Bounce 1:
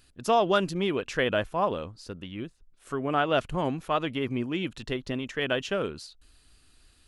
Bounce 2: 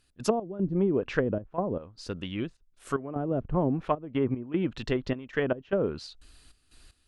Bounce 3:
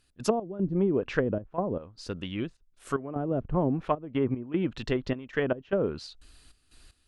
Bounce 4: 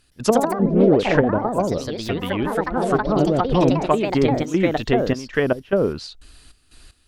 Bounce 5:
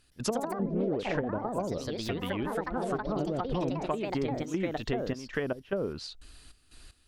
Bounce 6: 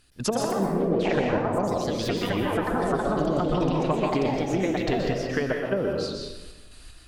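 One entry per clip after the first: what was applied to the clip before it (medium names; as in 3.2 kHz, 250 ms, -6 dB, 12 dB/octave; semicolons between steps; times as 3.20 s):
low-pass that closes with the level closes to 330 Hz, closed at -22 dBFS; trance gate ".x.xxxx.x.xxx" 76 bpm -12 dB; trim +4 dB
no audible change
ever faster or slower copies 117 ms, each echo +3 st, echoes 3; trim +8 dB
compression 3:1, threshold -25 dBFS, peak gain reduction 11.5 dB; trim -5 dB
reverberation RT60 1.1 s, pre-delay 117 ms, DRR 0.5 dB; trim +4.5 dB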